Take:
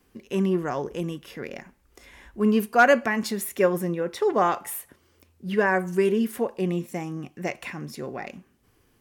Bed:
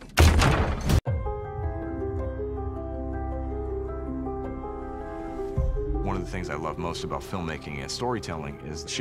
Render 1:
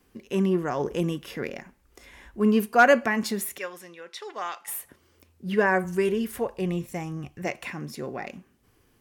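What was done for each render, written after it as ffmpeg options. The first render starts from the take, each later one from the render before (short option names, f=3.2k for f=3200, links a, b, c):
-filter_complex "[0:a]asettb=1/sr,asplit=3[a][b][c];[a]atrim=end=3.584[d];[b]atrim=start=3.58:end=4.68,asetpts=PTS-STARTPTS,afade=t=in:d=0.004:c=qsin,afade=t=out:st=1.096:d=0.004:c=qsin,bandpass=f=3.9k:t=q:w=0.82[e];[c]atrim=start=4.676[f];[d][e]acrossfade=d=0.004:c1=hsin:c2=qsin[g];[g][f]acrossfade=d=0.004:c1=qsin:c2=hsin,asplit=3[h][i][j];[h]afade=t=out:st=5.83:d=0.02[k];[i]asubboost=boost=9.5:cutoff=75,afade=t=in:st=5.83:d=0.02,afade=t=out:st=7.45:d=0.02[l];[j]afade=t=in:st=7.45:d=0.02[m];[k][l][m]amix=inputs=3:normalize=0,asplit=3[n][o][p];[n]atrim=end=0.802[q];[o]atrim=start=0.798:end=1.512,asetpts=PTS-STARTPTS,volume=3.5dB[r];[p]atrim=start=1.508[s];[q][r]acrossfade=d=0.004:c1=hsin:c2=hsin[t];[t][s]acrossfade=d=0.004:c1=hsin:c2=hsin"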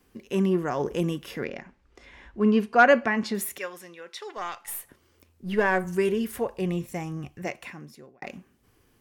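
-filter_complex "[0:a]asettb=1/sr,asplit=3[a][b][c];[a]atrim=end=1.444[d];[b]atrim=start=1.44:end=3.35,asetpts=PTS-STARTPTS,afade=t=in:d=0.004:c=qsin,afade=t=out:st=1.906:d=0.004:c=qsin,lowpass=4.6k[e];[c]atrim=start=3.346[f];[d][e]acrossfade=d=0.004:c1=hsin:c2=qsin[g];[g][f]acrossfade=d=0.004:c1=qsin:c2=hsin,asettb=1/sr,asplit=3[h][i][j];[h]atrim=end=4.374[k];[i]atrim=start=4.37:end=5.87,asetpts=PTS-STARTPTS,afade=t=in:d=0.004:c=qsin,afade=t=out:st=1.496:d=0.004:c=qsin,aeval=exprs='if(lt(val(0),0),0.708*val(0),val(0))':c=same[l];[j]atrim=start=5.866[m];[k][l]acrossfade=d=0.004:c1=hsin:c2=qsin[n];[n][m]acrossfade=d=0.004:c1=qsin:c2=hsin,asplit=2[o][p];[o]atrim=end=8.22,asetpts=PTS-STARTPTS,afade=t=out:st=7.25:d=0.97[q];[p]atrim=start=8.22,asetpts=PTS-STARTPTS,afade=t=in:d=0.004:c=hsin[r];[q][r]concat=n=2:v=0:a=1"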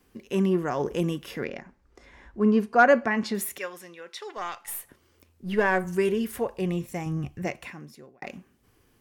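-filter_complex "[0:a]asettb=1/sr,asplit=3[a][b][c];[a]atrim=end=1.594[d];[b]atrim=start=1.59:end=3.11,asetpts=PTS-STARTPTS,afade=t=in:d=0.004:c=qsin,afade=t=out:st=1.516:d=0.004:c=qsin,equalizer=f=2.9k:t=o:w=1:g=-7[e];[c]atrim=start=3.106[f];[d][e]acrossfade=d=0.004:c1=hsin:c2=qsin[g];[g][f]acrossfade=d=0.004:c1=qsin:c2=hsin,asettb=1/sr,asplit=3[h][i][j];[h]atrim=end=7.064[k];[i]atrim=start=7.06:end=7.67,asetpts=PTS-STARTPTS,afade=t=in:d=0.004:c=qsin,afade=t=out:st=0.606:d=0.004:c=qsin,lowshelf=f=210:g=8.5[l];[j]atrim=start=7.666[m];[k][l]acrossfade=d=0.004:c1=hsin:c2=qsin[n];[n][m]acrossfade=d=0.004:c1=qsin:c2=hsin"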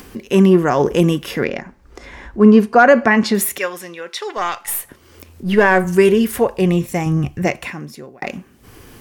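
-af "acompressor=mode=upward:threshold=-43dB:ratio=2.5,alimiter=level_in=12.5dB:limit=-1dB:release=50:level=0:latency=1"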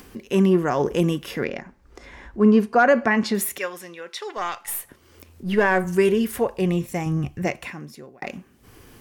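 -af "volume=-6.5dB"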